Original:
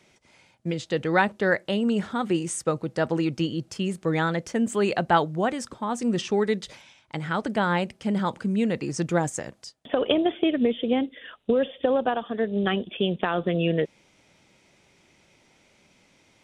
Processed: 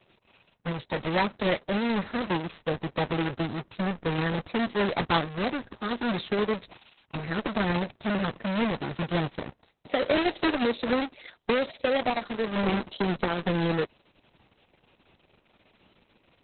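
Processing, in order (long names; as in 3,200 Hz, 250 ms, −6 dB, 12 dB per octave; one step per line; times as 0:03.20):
each half-wave held at its own peak
formants moved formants +3 semitones
level −5.5 dB
Opus 6 kbit/s 48,000 Hz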